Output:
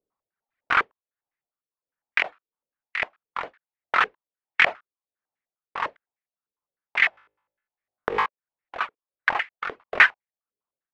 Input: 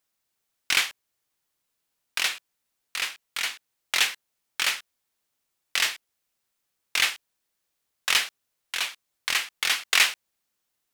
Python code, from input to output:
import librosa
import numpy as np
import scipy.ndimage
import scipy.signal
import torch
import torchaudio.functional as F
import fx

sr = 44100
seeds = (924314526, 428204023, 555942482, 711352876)

y = fx.dereverb_blind(x, sr, rt60_s=2.0)
y = fx.leveller(y, sr, passes=1)
y = y * (1.0 - 0.61 / 2.0 + 0.61 / 2.0 * np.cos(2.0 * np.pi * 1.5 * (np.arange(len(y)) / sr)))
y = fx.room_flutter(y, sr, wall_m=3.3, rt60_s=0.67, at=(7.11, 8.26))
y = fx.filter_held_lowpass(y, sr, hz=9.9, low_hz=440.0, high_hz=2000.0)
y = y * 10.0 ** (2.5 / 20.0)